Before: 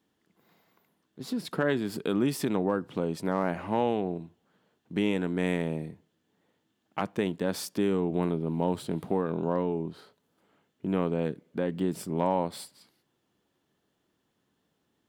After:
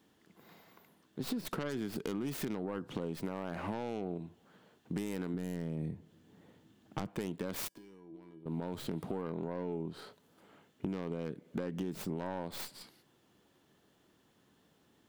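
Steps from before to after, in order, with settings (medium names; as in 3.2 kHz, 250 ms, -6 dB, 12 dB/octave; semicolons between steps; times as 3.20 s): tracing distortion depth 0.33 ms; 5.34–7.09 s: bass shelf 300 Hz +11 dB; peak limiter -22.5 dBFS, peak gain reduction 13 dB; compression 6:1, threshold -41 dBFS, peak gain reduction 13.5 dB; 7.68–8.46 s: feedback comb 330 Hz, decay 0.48 s, harmonics odd, mix 90%; trim +6.5 dB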